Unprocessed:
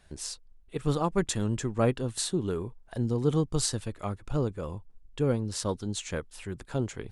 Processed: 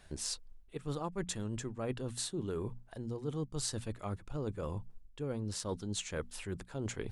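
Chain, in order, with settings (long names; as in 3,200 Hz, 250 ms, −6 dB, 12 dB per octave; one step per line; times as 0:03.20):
reversed playback
downward compressor 6 to 1, threshold −37 dBFS, peak gain reduction 16 dB
reversed playback
mains-hum notches 60/120/180/240 Hz
level +2.5 dB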